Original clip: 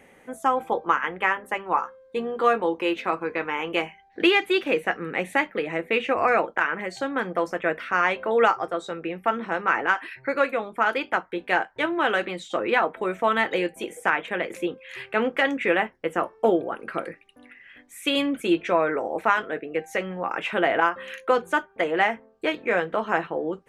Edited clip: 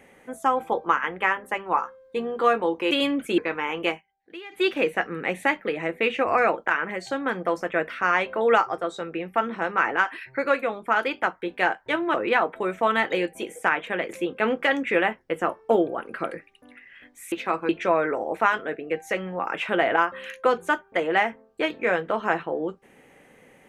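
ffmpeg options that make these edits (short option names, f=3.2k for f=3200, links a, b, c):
-filter_complex "[0:a]asplit=9[a][b][c][d][e][f][g][h][i];[a]atrim=end=2.912[j];[b]atrim=start=18.058:end=18.532[k];[c]atrim=start=3.278:end=3.92,asetpts=PTS-STARTPTS,afade=t=out:st=0.512:d=0.13:silence=0.0891251[l];[d]atrim=start=3.92:end=4.4,asetpts=PTS-STARTPTS,volume=-21dB[m];[e]atrim=start=4.4:end=12.042,asetpts=PTS-STARTPTS,afade=t=in:d=0.13:silence=0.0891251[n];[f]atrim=start=12.548:end=14.792[o];[g]atrim=start=15.118:end=18.062[p];[h]atrim=start=2.908:end=3.282[q];[i]atrim=start=18.528[r];[j][k]acrossfade=d=0.004:c1=hsin:c2=hsin[s];[l][m][n]concat=n=3:v=0:a=1[t];[s][t]acrossfade=d=0.004:c1=hsin:c2=hsin[u];[u][o]acrossfade=d=0.004:c1=hsin:c2=hsin[v];[v][p]acrossfade=d=0.004:c1=hsin:c2=hsin[w];[w][q]acrossfade=d=0.004:c1=hsin:c2=hsin[x];[x][r]acrossfade=d=0.004:c1=hsin:c2=hsin"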